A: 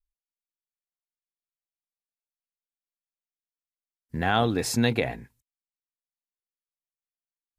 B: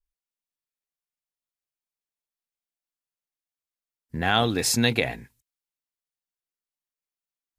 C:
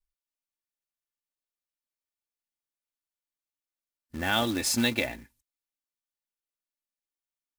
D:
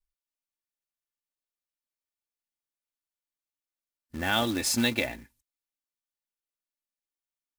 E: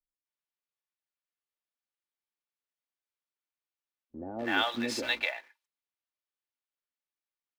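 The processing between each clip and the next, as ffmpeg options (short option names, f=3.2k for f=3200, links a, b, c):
-af "adynamicequalizer=threshold=0.0112:dfrequency=1800:dqfactor=0.7:tfrequency=1800:tqfactor=0.7:attack=5:release=100:ratio=0.375:range=3.5:mode=boostabove:tftype=highshelf"
-af "aecho=1:1:3.4:0.69,acrusher=bits=3:mode=log:mix=0:aa=0.000001,volume=-5.5dB"
-af anull
-filter_complex "[0:a]acrossover=split=280 4400:gain=0.178 1 0.126[a][b][c];[a][b][c]amix=inputs=3:normalize=0,acrossover=split=580[d][e];[e]adelay=250[f];[d][f]amix=inputs=2:normalize=0"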